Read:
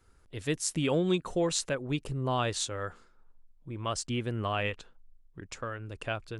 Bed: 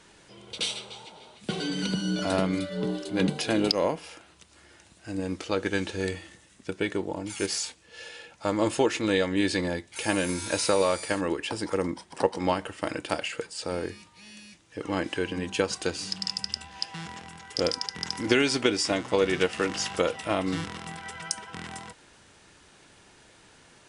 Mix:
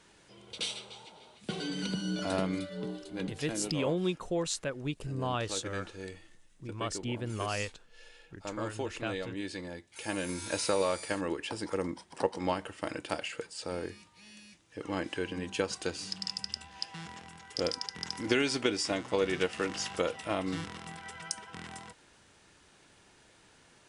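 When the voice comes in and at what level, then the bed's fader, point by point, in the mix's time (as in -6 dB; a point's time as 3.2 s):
2.95 s, -3.5 dB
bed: 2.52 s -5.5 dB
3.36 s -13 dB
9.67 s -13 dB
10.46 s -5.5 dB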